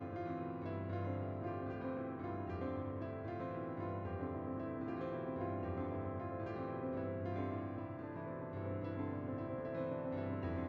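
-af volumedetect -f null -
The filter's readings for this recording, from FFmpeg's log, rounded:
mean_volume: -41.9 dB
max_volume: -28.3 dB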